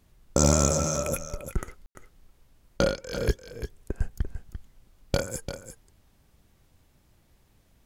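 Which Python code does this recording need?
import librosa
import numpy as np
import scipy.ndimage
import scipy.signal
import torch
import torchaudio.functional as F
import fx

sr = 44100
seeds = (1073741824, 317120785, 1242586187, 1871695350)

y = fx.fix_ambience(x, sr, seeds[0], print_start_s=7.19, print_end_s=7.69, start_s=1.86, end_s=1.95)
y = fx.fix_echo_inverse(y, sr, delay_ms=344, level_db=-10.0)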